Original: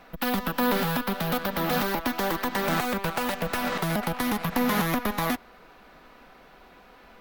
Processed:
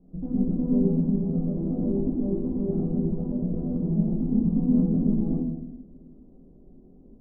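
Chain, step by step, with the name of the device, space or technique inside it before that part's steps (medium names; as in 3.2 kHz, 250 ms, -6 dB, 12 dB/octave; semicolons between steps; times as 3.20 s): next room (low-pass 340 Hz 24 dB/octave; reverberation RT60 1.0 s, pre-delay 10 ms, DRR -6.5 dB)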